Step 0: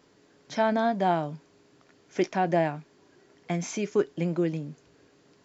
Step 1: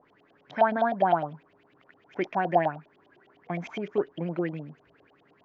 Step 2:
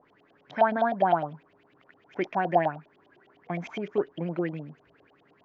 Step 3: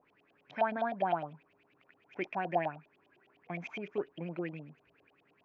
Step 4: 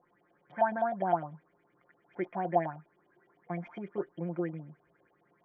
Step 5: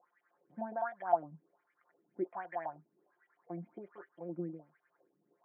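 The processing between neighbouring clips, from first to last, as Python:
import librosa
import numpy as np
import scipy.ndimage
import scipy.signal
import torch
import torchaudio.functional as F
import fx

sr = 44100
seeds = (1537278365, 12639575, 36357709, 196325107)

y1 = fx.dynamic_eq(x, sr, hz=2400.0, q=1.3, threshold_db=-43.0, ratio=4.0, max_db=-4)
y1 = fx.filter_lfo_lowpass(y1, sr, shape='saw_up', hz=9.8, low_hz=620.0, high_hz=3300.0, q=5.7)
y1 = y1 * 10.0 ** (-4.5 / 20.0)
y2 = y1
y3 = fx.peak_eq(y2, sr, hz=2500.0, db=10.5, octaves=0.36)
y3 = y3 * 10.0 ** (-8.5 / 20.0)
y4 = scipy.signal.savgol_filter(y3, 41, 4, mode='constant')
y4 = y4 + 0.7 * np.pad(y4, (int(5.7 * sr / 1000.0), 0))[:len(y4)]
y5 = fx.wah_lfo(y4, sr, hz=1.3, low_hz=220.0, high_hz=1900.0, q=2.4)
y5 = y5 * 10.0 ** (1.0 / 20.0)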